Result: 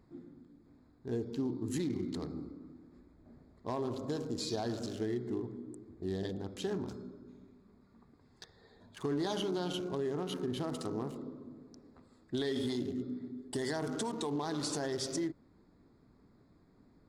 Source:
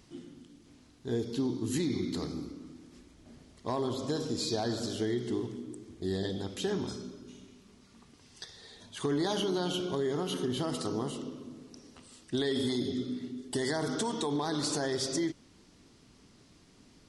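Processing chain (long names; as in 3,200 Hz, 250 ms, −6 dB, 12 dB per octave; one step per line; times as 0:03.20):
adaptive Wiener filter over 15 samples
level −3.5 dB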